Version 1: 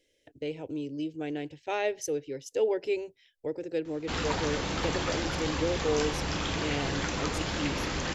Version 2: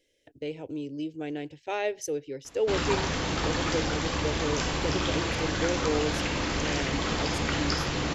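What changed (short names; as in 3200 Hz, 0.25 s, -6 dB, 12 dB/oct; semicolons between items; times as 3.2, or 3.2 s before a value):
background: entry -1.40 s; reverb: on, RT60 0.30 s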